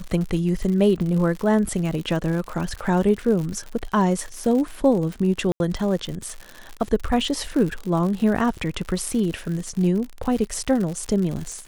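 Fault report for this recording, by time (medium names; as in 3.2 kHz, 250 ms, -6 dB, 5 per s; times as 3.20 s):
crackle 100 per s -28 dBFS
5.52–5.60 s: dropout 81 ms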